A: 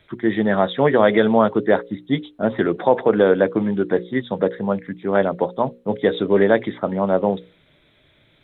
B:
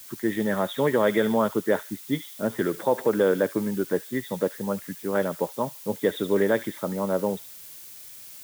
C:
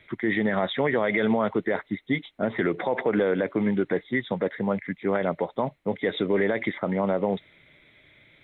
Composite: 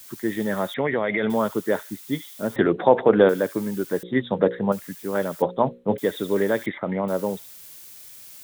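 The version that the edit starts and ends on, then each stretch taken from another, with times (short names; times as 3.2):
B
0.74–1.3 from C
2.56–3.29 from A
4.03–4.72 from A
5.42–5.98 from A
6.66–7.08 from C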